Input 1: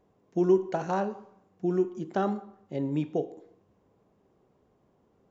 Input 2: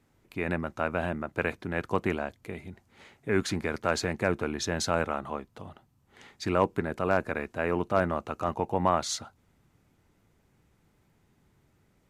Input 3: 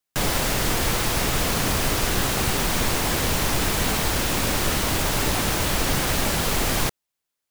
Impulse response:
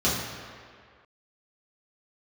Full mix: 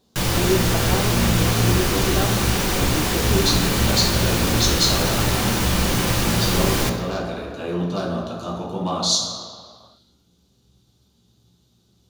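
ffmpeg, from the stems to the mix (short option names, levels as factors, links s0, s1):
-filter_complex "[0:a]volume=1[s0];[1:a]highshelf=f=2800:t=q:w=3:g=10.5,volume=0.299,asplit=2[s1][s2];[s2]volume=0.596[s3];[2:a]volume=0.794,asplit=2[s4][s5];[s5]volume=0.188[s6];[3:a]atrim=start_sample=2205[s7];[s3][s6]amix=inputs=2:normalize=0[s8];[s8][s7]afir=irnorm=-1:irlink=0[s9];[s0][s1][s4][s9]amix=inputs=4:normalize=0"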